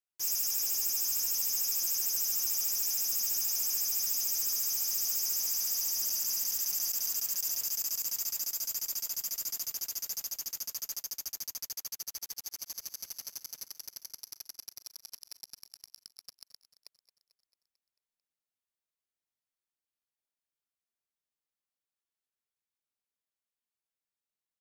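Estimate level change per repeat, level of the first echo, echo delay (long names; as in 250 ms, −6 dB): −4.5 dB, −16.0 dB, 222 ms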